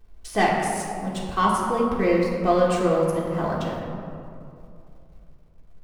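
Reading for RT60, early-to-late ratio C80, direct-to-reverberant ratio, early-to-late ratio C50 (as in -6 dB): 2.6 s, 2.0 dB, -5.0 dB, 1.0 dB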